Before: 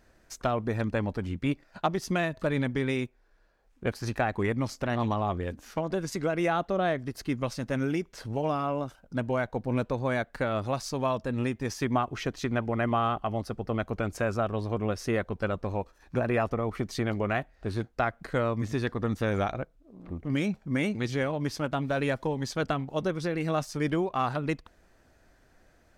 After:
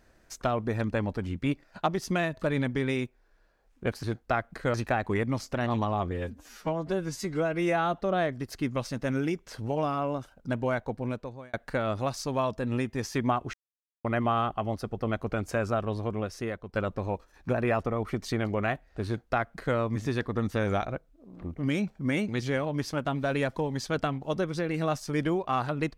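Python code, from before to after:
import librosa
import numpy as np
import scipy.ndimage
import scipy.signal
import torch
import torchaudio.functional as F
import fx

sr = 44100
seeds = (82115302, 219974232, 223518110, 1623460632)

y = fx.edit(x, sr, fx.stretch_span(start_s=5.4, length_s=1.25, factor=1.5),
    fx.fade_out_span(start_s=9.47, length_s=0.73),
    fx.silence(start_s=12.2, length_s=0.51),
    fx.fade_out_to(start_s=14.57, length_s=0.83, floor_db=-10.0),
    fx.duplicate(start_s=17.72, length_s=0.71, to_s=4.03), tone=tone)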